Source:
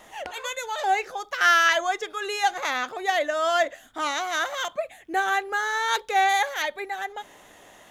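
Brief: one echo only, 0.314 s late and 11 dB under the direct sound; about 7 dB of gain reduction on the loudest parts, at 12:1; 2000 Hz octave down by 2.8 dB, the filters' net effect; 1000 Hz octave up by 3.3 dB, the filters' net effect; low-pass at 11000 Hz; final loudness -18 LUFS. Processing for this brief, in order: LPF 11000 Hz; bell 1000 Hz +6.5 dB; bell 2000 Hz -6 dB; compressor 12:1, threshold -21 dBFS; echo 0.314 s -11 dB; gain +9 dB

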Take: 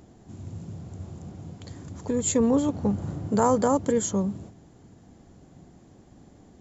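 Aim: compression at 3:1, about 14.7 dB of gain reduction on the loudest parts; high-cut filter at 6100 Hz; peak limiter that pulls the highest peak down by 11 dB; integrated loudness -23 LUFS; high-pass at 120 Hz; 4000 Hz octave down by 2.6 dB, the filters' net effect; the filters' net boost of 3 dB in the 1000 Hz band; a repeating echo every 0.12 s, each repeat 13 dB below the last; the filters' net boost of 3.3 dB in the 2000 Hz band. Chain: HPF 120 Hz; LPF 6100 Hz; bell 1000 Hz +3 dB; bell 2000 Hz +4 dB; bell 4000 Hz -4 dB; compressor 3:1, threshold -36 dBFS; limiter -31.5 dBFS; feedback echo 0.12 s, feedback 22%, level -13 dB; gain +18.5 dB

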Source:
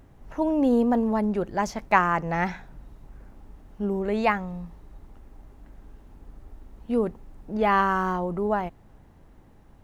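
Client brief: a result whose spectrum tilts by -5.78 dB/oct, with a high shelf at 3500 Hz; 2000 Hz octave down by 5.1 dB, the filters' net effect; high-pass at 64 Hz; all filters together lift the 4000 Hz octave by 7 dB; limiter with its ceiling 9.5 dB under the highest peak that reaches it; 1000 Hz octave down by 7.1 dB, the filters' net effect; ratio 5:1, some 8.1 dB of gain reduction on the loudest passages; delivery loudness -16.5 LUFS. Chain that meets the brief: HPF 64 Hz; bell 1000 Hz -8.5 dB; bell 2000 Hz -7 dB; high shelf 3500 Hz +8 dB; bell 4000 Hz +7.5 dB; compressor 5:1, threshold -28 dBFS; gain +18.5 dB; limiter -7 dBFS

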